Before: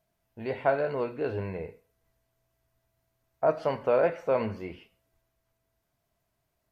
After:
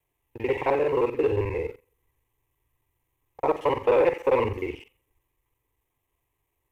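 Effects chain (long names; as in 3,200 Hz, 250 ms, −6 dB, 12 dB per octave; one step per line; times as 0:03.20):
reversed piece by piece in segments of 44 ms
phaser with its sweep stopped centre 970 Hz, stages 8
leveller curve on the samples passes 1
level +6 dB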